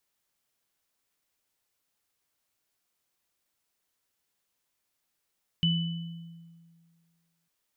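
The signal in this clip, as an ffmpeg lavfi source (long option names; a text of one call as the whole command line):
ffmpeg -f lavfi -i "aevalsrc='0.0794*pow(10,-3*t/1.9)*sin(2*PI*167*t)+0.0631*pow(10,-3*t/0.98)*sin(2*PI*2990*t)':duration=1.85:sample_rate=44100" out.wav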